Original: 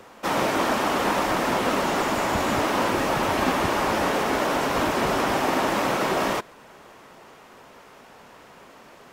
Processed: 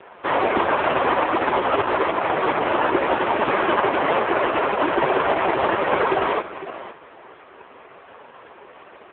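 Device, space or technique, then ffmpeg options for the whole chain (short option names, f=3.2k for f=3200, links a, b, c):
satellite phone: -filter_complex "[0:a]asettb=1/sr,asplit=3[a][b][c];[a]atrim=end=1.884[d];[b]atrim=start=1.88:end=3.68,asetpts=PTS-STARTPTS,afade=t=in:d=0.004:c=qsin,afade=t=out:st=1.796:d=0.004:c=qsin,highpass=120[e];[c]atrim=start=3.676[f];[d][e]acrossfade=d=0.004:c1=hsin:c2=qsin[g];[g][f]acrossfade=d=0.004:c1=qsin:c2=hsin,highpass=380,lowpass=3.1k,equalizer=f=380:t=o:w=0.42:g=5.5,aecho=1:1:505:0.188,volume=8.5dB" -ar 8000 -c:a libopencore_amrnb -b:a 4750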